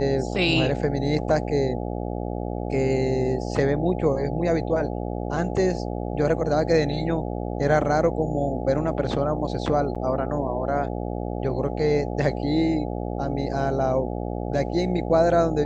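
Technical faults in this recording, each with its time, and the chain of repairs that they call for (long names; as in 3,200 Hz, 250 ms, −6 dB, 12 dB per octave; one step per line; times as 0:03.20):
mains buzz 60 Hz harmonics 14 −29 dBFS
0:09.95–0:09.96: drop-out 6.3 ms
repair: hum removal 60 Hz, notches 14
repair the gap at 0:09.95, 6.3 ms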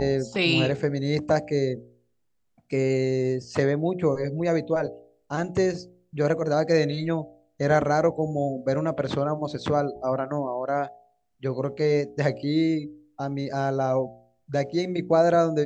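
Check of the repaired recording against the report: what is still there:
none of them is left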